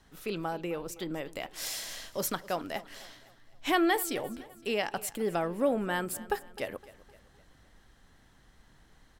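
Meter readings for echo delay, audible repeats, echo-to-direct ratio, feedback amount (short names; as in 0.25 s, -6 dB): 0.257 s, 3, -18.0 dB, 46%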